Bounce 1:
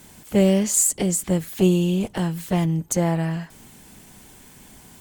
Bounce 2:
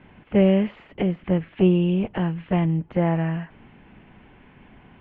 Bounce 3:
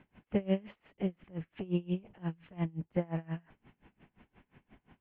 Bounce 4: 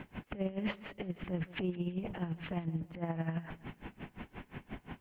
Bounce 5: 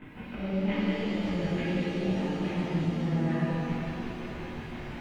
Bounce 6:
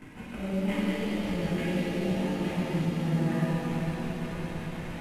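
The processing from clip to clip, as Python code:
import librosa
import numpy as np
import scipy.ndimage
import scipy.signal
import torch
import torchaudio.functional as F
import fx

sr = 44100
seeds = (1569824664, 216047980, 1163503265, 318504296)

y1 = scipy.signal.sosfilt(scipy.signal.butter(8, 2900.0, 'lowpass', fs=sr, output='sos'), x)
y2 = y1 * 10.0 ** (-27 * (0.5 - 0.5 * np.cos(2.0 * np.pi * 5.7 * np.arange(len(y1)) / sr)) / 20.0)
y2 = F.gain(torch.from_numpy(y2), -7.5).numpy()
y3 = fx.over_compress(y2, sr, threshold_db=-44.0, ratio=-1.0)
y3 = fx.echo_feedback(y3, sr, ms=164, feedback_pct=36, wet_db=-18.5)
y3 = F.gain(torch.from_numpy(y3), 7.0).numpy()
y4 = fx.chorus_voices(y3, sr, voices=2, hz=0.75, base_ms=19, depth_ms=2.6, mix_pct=70)
y4 = fx.rev_shimmer(y4, sr, seeds[0], rt60_s=3.6, semitones=7, shimmer_db=-8, drr_db=-9.5)
y5 = fx.cvsd(y4, sr, bps=64000)
y5 = fx.echo_swell(y5, sr, ms=113, loudest=5, wet_db=-17)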